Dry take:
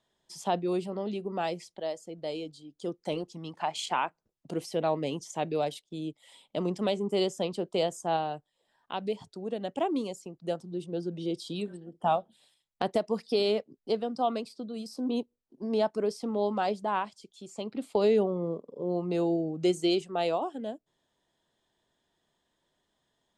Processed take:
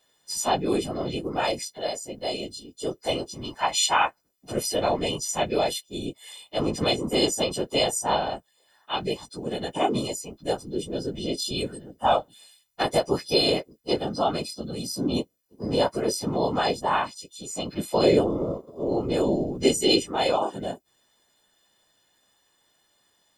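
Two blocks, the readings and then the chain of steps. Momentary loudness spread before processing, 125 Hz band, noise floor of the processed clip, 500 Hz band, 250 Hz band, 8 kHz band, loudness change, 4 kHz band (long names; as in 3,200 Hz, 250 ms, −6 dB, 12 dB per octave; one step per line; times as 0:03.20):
11 LU, +5.5 dB, −68 dBFS, +4.0 dB, +4.0 dB, +16.5 dB, +5.5 dB, +11.5 dB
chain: every partial snapped to a pitch grid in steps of 3 semitones
random phases in short frames
level +4.5 dB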